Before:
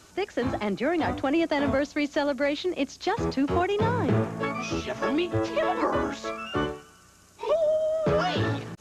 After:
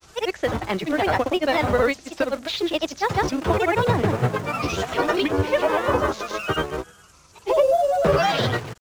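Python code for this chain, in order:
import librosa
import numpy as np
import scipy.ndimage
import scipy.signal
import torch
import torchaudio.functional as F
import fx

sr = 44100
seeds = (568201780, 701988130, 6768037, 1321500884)

p1 = fx.peak_eq(x, sr, hz=250.0, db=-9.0, octaves=0.76)
p2 = fx.quant_dither(p1, sr, seeds[0], bits=6, dither='none')
p3 = p1 + F.gain(torch.from_numpy(p2), -10.5).numpy()
p4 = fx.granulator(p3, sr, seeds[1], grain_ms=100.0, per_s=20.0, spray_ms=100.0, spread_st=3)
y = F.gain(torch.from_numpy(p4), 5.5).numpy()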